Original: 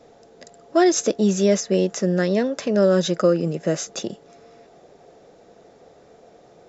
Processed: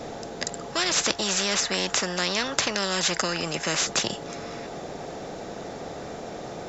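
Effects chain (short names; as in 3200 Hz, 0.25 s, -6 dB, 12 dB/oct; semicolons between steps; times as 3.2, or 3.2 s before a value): spectral compressor 4:1; gain +4 dB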